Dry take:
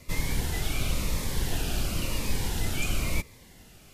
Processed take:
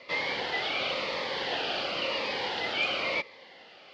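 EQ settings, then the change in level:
high-frequency loss of the air 120 metres
loudspeaker in its box 480–4,700 Hz, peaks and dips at 530 Hz +9 dB, 800 Hz +5 dB, 1,200 Hz +3 dB, 2,000 Hz +5 dB, 3,100 Hz +6 dB, 4,600 Hz +7 dB
+4.0 dB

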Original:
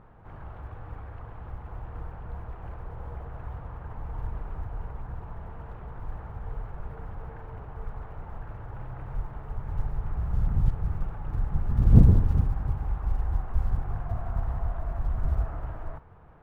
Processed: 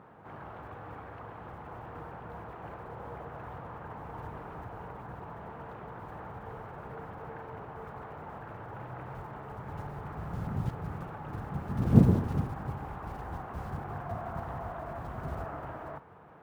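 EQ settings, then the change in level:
high-pass filter 180 Hz 12 dB per octave
+3.5 dB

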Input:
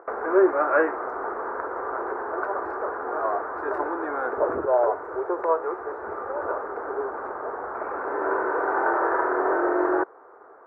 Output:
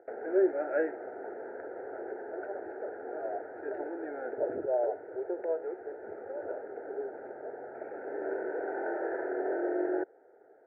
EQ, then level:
high-pass filter 100 Hz 24 dB per octave
Butterworth band-reject 1,100 Hz, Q 1.2
low-pass filter 2,000 Hz 12 dB per octave
−7.0 dB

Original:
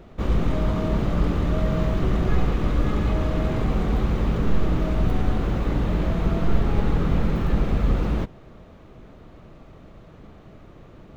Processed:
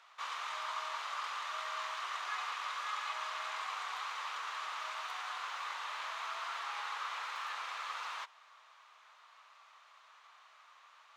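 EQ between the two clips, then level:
four-pole ladder high-pass 900 Hz, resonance 55%
high-frequency loss of the air 82 metres
first difference
+17.0 dB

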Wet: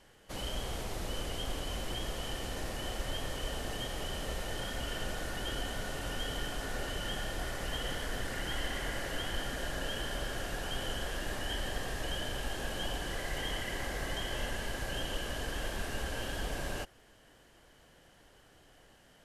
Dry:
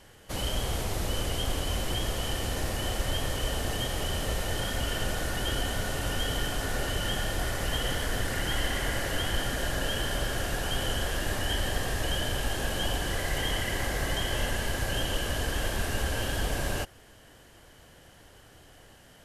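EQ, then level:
parametric band 90 Hz −6.5 dB 0.88 octaves
high-shelf EQ 9,500 Hz −6 dB
−6.0 dB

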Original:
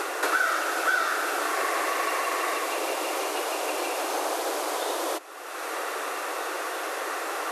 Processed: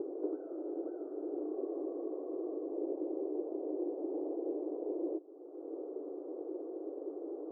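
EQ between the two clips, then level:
high-pass filter 230 Hz
inverse Chebyshev low-pass filter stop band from 2,100 Hz, stop band 80 dB
+4.5 dB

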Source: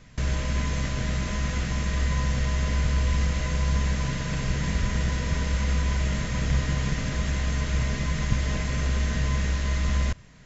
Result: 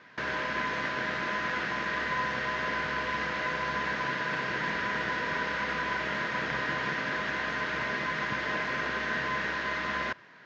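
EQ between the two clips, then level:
high-frequency loss of the air 100 metres
loudspeaker in its box 340–5,300 Hz, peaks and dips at 350 Hz +5 dB, 940 Hz +5 dB, 1,600 Hz +8 dB
parametric band 1,400 Hz +3.5 dB 1.7 octaves
0.0 dB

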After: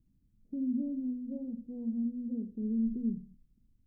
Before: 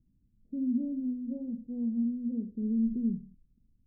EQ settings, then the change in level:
dynamic equaliser 130 Hz, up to −4 dB, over −43 dBFS, Q 0.78
mains-hum notches 60/120/180/240 Hz
0.0 dB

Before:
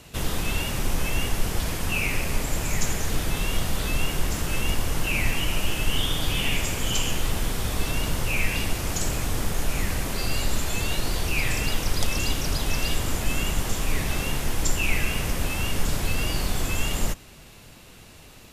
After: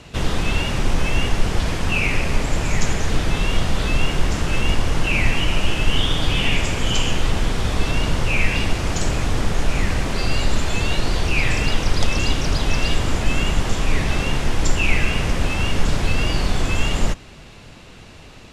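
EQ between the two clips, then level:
high-frequency loss of the air 82 metres
+6.5 dB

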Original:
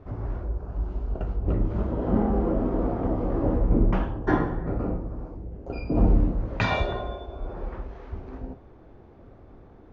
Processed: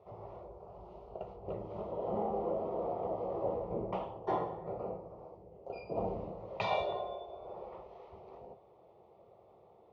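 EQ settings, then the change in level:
high-pass filter 250 Hz 12 dB per octave
low-pass filter 3,800 Hz 12 dB per octave
phaser with its sweep stopped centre 660 Hz, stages 4
−3.0 dB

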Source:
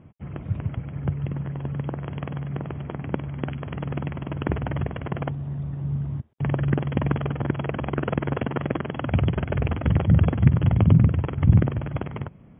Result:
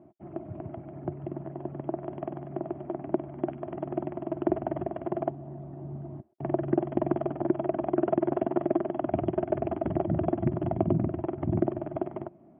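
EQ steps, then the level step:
pair of resonant band-passes 480 Hz, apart 0.87 octaves
+8.5 dB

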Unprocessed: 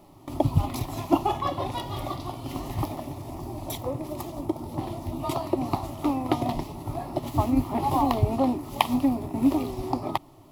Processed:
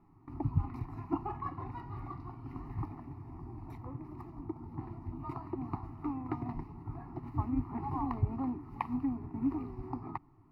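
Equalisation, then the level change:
high-frequency loss of the air 390 metres
phaser with its sweep stopped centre 1,400 Hz, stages 4
−7.0 dB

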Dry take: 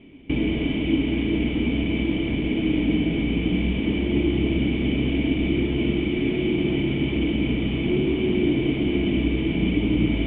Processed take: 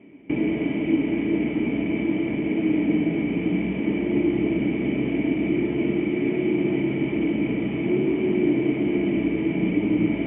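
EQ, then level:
high-frequency loss of the air 61 metres
loudspeaker in its box 230–2,000 Hz, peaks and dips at 250 Hz −6 dB, 390 Hz −4 dB, 740 Hz −4 dB, 1,100 Hz −5 dB, 1,500 Hz −6 dB
notch filter 500 Hz, Q 12
+5.5 dB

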